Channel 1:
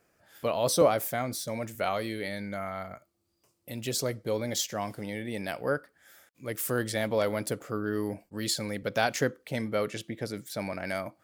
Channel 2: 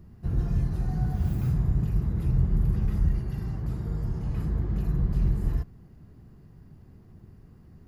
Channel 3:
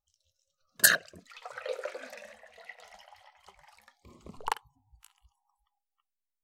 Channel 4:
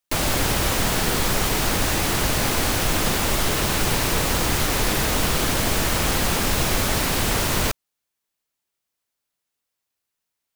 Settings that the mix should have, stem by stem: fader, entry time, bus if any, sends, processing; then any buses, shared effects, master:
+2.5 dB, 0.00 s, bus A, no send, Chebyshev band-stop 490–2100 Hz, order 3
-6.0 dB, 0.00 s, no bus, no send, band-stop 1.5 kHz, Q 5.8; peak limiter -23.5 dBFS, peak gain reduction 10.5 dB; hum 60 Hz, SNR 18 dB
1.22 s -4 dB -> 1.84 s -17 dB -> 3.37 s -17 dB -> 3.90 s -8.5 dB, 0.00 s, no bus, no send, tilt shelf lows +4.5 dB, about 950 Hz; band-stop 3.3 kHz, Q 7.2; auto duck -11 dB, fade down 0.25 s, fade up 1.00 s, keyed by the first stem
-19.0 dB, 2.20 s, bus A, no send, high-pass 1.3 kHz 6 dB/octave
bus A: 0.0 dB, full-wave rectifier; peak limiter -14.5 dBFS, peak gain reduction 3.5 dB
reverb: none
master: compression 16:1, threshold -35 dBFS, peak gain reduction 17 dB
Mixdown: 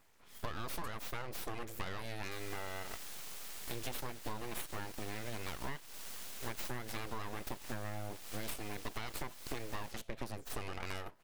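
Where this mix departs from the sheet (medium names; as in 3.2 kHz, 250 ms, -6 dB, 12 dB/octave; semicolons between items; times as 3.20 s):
stem 1: missing Chebyshev band-stop 490–2100 Hz, order 3; stem 2: muted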